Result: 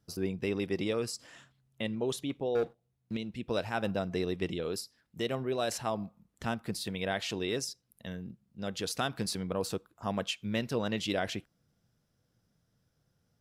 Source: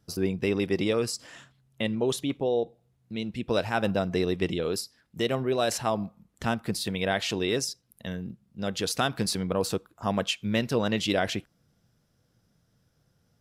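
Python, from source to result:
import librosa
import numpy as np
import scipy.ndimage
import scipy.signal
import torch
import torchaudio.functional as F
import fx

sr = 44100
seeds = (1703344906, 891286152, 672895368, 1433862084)

y = fx.leveller(x, sr, passes=2, at=(2.55, 3.17))
y = y * librosa.db_to_amplitude(-6.0)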